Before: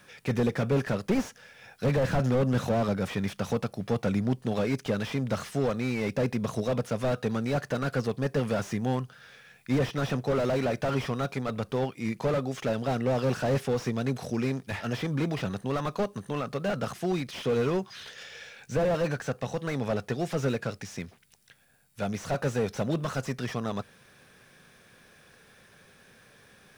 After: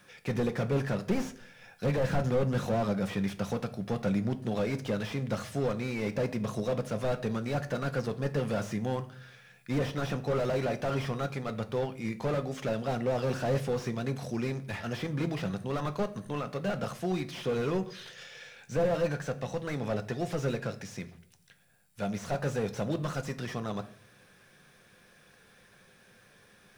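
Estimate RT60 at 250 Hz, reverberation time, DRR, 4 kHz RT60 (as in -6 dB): 0.75 s, 0.60 s, 8.5 dB, 0.45 s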